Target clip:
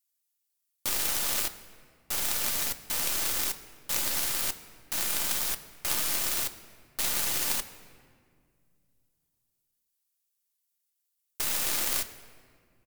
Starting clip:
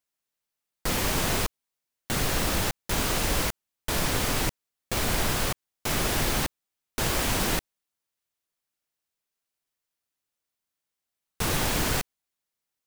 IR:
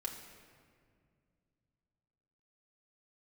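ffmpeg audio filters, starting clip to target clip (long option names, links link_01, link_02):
-filter_complex "[0:a]crystalizer=i=8:c=0,asetrate=41625,aresample=44100,atempo=1.05946,aeval=exprs='1.33*(cos(1*acos(clip(val(0)/1.33,-1,1)))-cos(1*PI/2))+0.596*(cos(3*acos(clip(val(0)/1.33,-1,1)))-cos(3*PI/2))+0.0266*(cos(6*acos(clip(val(0)/1.33,-1,1)))-cos(6*PI/2))+0.0376*(cos(8*acos(clip(val(0)/1.33,-1,1)))-cos(8*PI/2))':channel_layout=same,asplit=2[link_01][link_02];[1:a]atrim=start_sample=2205[link_03];[link_02][link_03]afir=irnorm=-1:irlink=0,volume=-2dB[link_04];[link_01][link_04]amix=inputs=2:normalize=0,volume=-9.5dB"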